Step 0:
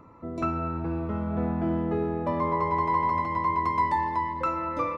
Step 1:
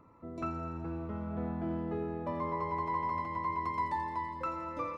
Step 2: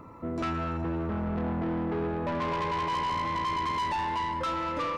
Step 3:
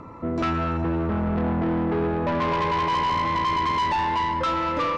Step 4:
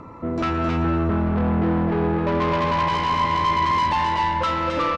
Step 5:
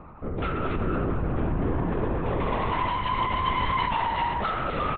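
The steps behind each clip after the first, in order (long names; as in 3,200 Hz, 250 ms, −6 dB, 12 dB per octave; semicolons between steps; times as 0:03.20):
delay with a high-pass on its return 84 ms, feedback 71%, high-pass 3,600 Hz, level −6 dB; level −8.5 dB
in parallel at −3 dB: brickwall limiter −32.5 dBFS, peak gain reduction 9 dB; on the sum: soft clipping −35 dBFS, distortion −9 dB; level +8 dB
low-pass filter 6,400 Hz 12 dB per octave; level +6.5 dB
single-tap delay 266 ms −4 dB; level +1 dB
linear-prediction vocoder at 8 kHz whisper; level −5 dB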